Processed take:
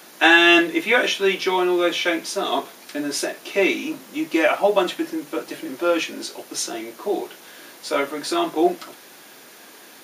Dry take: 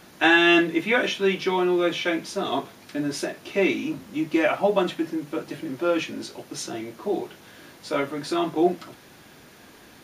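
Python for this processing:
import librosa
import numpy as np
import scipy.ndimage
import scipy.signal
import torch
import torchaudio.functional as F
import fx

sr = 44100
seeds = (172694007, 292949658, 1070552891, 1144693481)

y = scipy.signal.sosfilt(scipy.signal.butter(2, 320.0, 'highpass', fs=sr, output='sos'), x)
y = fx.high_shelf(y, sr, hz=6200.0, db=7.5)
y = y * 10.0 ** (4.0 / 20.0)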